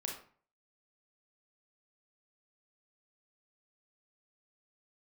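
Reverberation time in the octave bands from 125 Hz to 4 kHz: 0.55, 0.50, 0.45, 0.45, 0.40, 0.30 s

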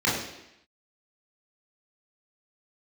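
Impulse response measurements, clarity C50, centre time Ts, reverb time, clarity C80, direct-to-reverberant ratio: 3.0 dB, 53 ms, 0.85 s, 6.0 dB, -7.5 dB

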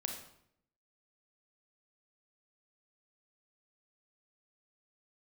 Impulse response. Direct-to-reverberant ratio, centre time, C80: 2.5 dB, 30 ms, 8.5 dB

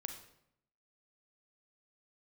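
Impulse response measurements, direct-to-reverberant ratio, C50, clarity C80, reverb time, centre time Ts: 5.0 dB, 7.5 dB, 10.5 dB, 0.75 s, 19 ms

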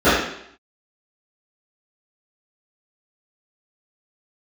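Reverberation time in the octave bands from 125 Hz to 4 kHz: 0.60, 0.70, 0.70, 0.70, 0.70, 0.70 s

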